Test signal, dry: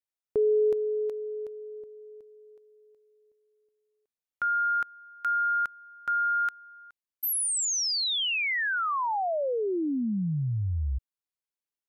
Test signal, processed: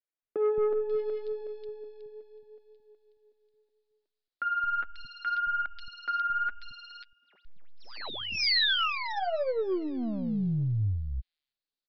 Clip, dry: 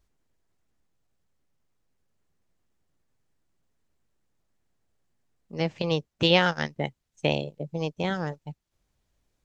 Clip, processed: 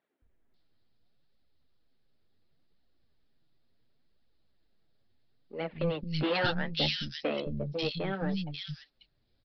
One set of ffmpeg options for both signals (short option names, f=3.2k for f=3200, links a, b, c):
-filter_complex "[0:a]aeval=exprs='if(lt(val(0),0),0.708*val(0),val(0))':c=same,equalizer=f=250:t=o:w=0.67:g=4,equalizer=f=1k:t=o:w=0.67:g=-6,equalizer=f=4k:t=o:w=0.67:g=8,flanger=delay=1:depth=9.3:regen=19:speed=0.71:shape=triangular,aresample=11025,asoftclip=type=tanh:threshold=-27dB,aresample=44100,acrossover=split=230|2500[a][b][c];[a]adelay=220[d];[c]adelay=540[e];[d][b][e]amix=inputs=3:normalize=0,volume=5.5dB"